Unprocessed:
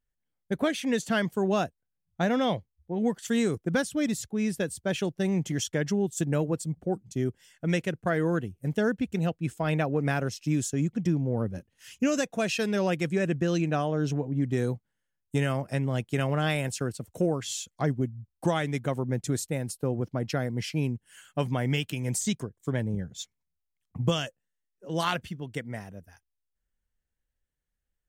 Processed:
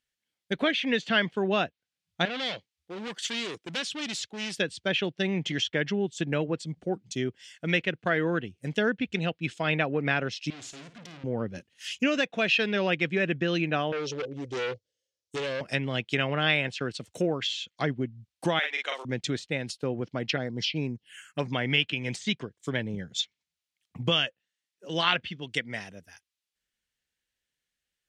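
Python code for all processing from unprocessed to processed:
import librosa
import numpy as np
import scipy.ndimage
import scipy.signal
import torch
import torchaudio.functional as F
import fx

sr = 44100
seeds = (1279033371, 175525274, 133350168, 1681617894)

y = fx.chain(x, sr, fx.highpass(hz=310.0, slope=6),
    fx.clip_hard(threshold_db=-34.0), at=(2.25, 4.57))
y = fx.chain(y, sr, fx.tube_stage(drive_db=44.0, bias=0.55),
    fx.high_shelf(hz=9100.0, db=-7.5),
    fx.room_flutter(wall_m=9.3, rt60_s=0.28), at=(10.5, 11.24))
y = fx.chain(y, sr, fx.curve_eq(hz=(100.0, 200.0, 520.0, 1000.0, 5700.0, 12000.0), db=(0, -16, 10, -26, 2, -11)),
    fx.clip_hard(threshold_db=-29.5), at=(13.92, 15.61))
y = fx.chain(y, sr, fx.bessel_highpass(hz=800.0, order=4),
    fx.doubler(ms=41.0, db=-3), at=(18.59, 19.05))
y = fx.chain(y, sr, fx.median_filter(points=3),
    fx.env_phaser(low_hz=490.0, high_hz=3100.0, full_db=-25.0), at=(20.36, 21.53))
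y = fx.weighting(y, sr, curve='D')
y = fx.env_lowpass_down(y, sr, base_hz=2300.0, full_db=-24.0)
y = fx.dynamic_eq(y, sr, hz=3400.0, q=1.4, threshold_db=-45.0, ratio=4.0, max_db=4)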